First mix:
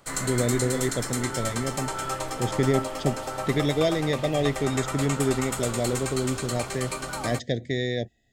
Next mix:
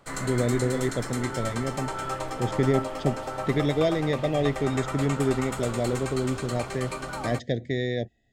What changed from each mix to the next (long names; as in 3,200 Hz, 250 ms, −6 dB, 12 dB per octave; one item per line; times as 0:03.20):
master: add high-shelf EQ 4,300 Hz −10 dB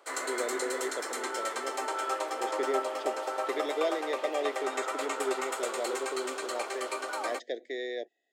speech −5.5 dB
master: add Butterworth high-pass 340 Hz 36 dB per octave